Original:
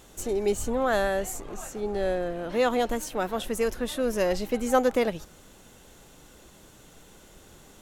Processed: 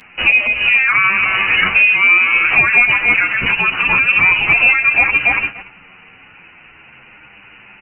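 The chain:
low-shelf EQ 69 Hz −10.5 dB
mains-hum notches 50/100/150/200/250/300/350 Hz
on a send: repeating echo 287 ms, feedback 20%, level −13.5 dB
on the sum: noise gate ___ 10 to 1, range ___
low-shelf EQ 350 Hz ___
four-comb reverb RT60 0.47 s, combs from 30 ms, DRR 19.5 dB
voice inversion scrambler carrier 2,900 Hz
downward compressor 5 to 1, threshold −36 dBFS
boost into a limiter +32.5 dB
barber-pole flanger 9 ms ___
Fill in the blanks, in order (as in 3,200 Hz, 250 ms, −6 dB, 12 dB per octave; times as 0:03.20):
−46 dBFS, −14 dB, −7.5 dB, −0.47 Hz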